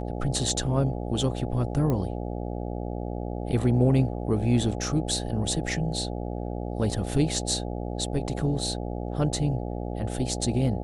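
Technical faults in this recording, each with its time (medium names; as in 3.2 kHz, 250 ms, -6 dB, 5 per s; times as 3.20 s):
buzz 60 Hz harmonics 14 -32 dBFS
1.90 s: pop -16 dBFS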